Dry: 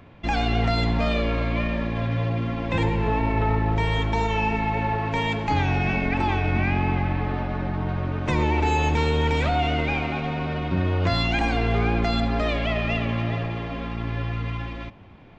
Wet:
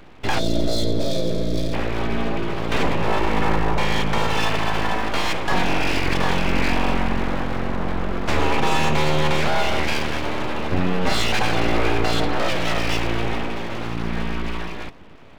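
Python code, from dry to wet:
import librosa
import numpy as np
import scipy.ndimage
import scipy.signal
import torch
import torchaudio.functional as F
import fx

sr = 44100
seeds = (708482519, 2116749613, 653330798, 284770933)

y = np.abs(x)
y = fx.spec_box(y, sr, start_s=0.39, length_s=1.34, low_hz=710.0, high_hz=3200.0, gain_db=-17)
y = y * librosa.db_to_amplitude(5.0)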